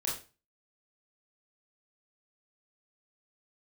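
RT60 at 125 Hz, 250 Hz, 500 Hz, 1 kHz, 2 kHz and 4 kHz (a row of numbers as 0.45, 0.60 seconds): 0.45, 0.35, 0.35, 0.30, 0.30, 0.30 seconds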